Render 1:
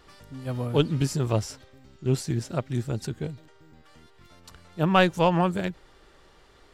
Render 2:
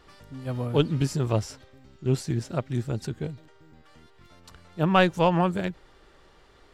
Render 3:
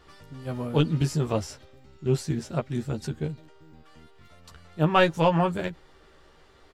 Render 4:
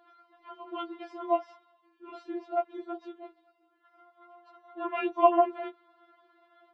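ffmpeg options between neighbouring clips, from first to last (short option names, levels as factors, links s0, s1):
-af "highshelf=f=5500:g=-4.5"
-filter_complex "[0:a]asplit=2[s0][s1];[s1]adelay=13,volume=0.562[s2];[s0][s2]amix=inputs=2:normalize=0,volume=0.891"
-af "highpass=f=330:w=0.5412,highpass=f=330:w=1.3066,equalizer=f=570:t=q:w=4:g=10,equalizer=f=1000:t=q:w=4:g=9,equalizer=f=1600:t=q:w=4:g=-7,equalizer=f=2500:t=q:w=4:g=-9,lowpass=f=2800:w=0.5412,lowpass=f=2800:w=1.3066,afftfilt=real='re*4*eq(mod(b,16),0)':imag='im*4*eq(mod(b,16),0)':win_size=2048:overlap=0.75"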